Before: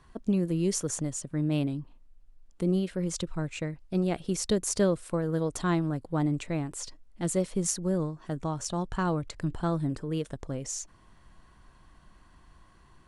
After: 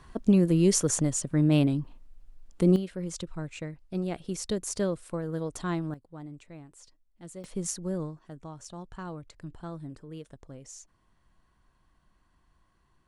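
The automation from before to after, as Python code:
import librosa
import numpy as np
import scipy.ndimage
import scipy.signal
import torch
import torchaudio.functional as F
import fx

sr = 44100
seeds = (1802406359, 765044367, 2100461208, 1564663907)

y = fx.gain(x, sr, db=fx.steps((0.0, 5.5), (2.76, -4.0), (5.94, -15.5), (7.44, -4.0), (8.19, -11.0)))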